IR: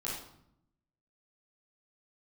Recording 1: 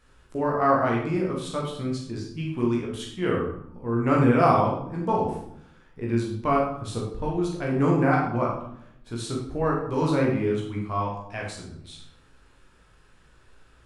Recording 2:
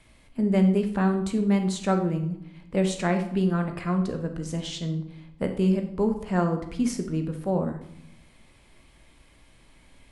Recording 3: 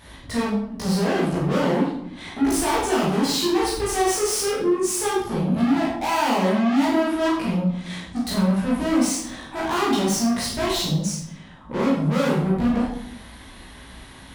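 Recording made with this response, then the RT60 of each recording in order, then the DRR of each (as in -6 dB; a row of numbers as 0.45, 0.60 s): 3; 0.70, 0.75, 0.70 s; -3.0, 5.5, -7.5 dB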